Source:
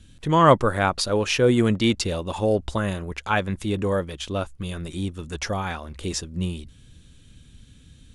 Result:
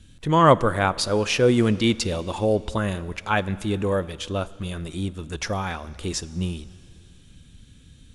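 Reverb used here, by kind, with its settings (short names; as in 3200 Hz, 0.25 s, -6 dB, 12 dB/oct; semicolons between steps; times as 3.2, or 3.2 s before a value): plate-style reverb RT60 2.7 s, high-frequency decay 0.95×, DRR 17.5 dB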